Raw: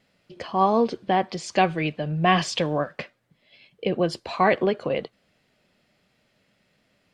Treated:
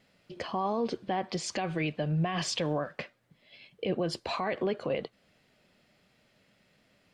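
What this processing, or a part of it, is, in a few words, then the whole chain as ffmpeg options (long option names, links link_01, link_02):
stacked limiters: -af "alimiter=limit=-10.5dB:level=0:latency=1:release=126,alimiter=limit=-17dB:level=0:latency=1:release=37,alimiter=limit=-21dB:level=0:latency=1:release=267"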